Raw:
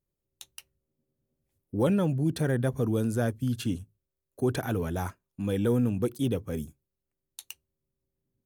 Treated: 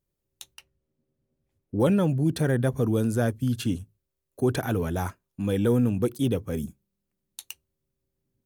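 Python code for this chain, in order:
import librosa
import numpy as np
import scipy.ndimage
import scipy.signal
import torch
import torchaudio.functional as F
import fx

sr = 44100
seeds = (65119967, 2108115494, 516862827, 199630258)

y = fx.lowpass(x, sr, hz=3000.0, slope=6, at=(0.54, 1.8))
y = fx.peak_eq(y, sr, hz=200.0, db=14.5, octaves=0.35, at=(6.63, 7.41))
y = F.gain(torch.from_numpy(y), 3.0).numpy()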